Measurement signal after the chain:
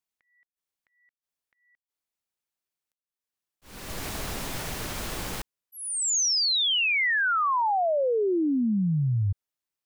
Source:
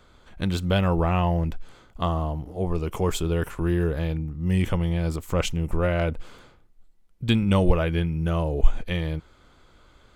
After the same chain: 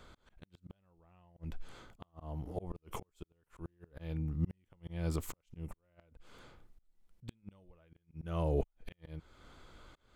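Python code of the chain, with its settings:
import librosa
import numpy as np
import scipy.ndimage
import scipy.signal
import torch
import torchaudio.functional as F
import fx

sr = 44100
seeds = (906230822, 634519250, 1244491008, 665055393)

y = fx.gate_flip(x, sr, shuts_db=-14.0, range_db=-40)
y = fx.auto_swell(y, sr, attack_ms=440.0)
y = F.gain(torch.from_numpy(y), -1.5).numpy()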